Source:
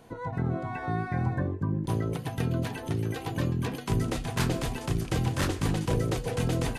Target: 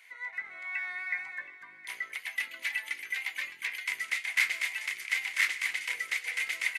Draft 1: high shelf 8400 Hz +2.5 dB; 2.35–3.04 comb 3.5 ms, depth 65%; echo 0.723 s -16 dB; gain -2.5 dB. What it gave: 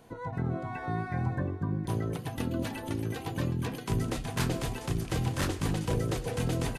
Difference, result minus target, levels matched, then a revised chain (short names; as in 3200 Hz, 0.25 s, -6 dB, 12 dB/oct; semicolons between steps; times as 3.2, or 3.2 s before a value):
2000 Hz band -12.0 dB
resonant high-pass 2100 Hz, resonance Q 15; high shelf 8400 Hz +2.5 dB; 2.35–3.04 comb 3.5 ms, depth 65%; echo 0.723 s -16 dB; gain -2.5 dB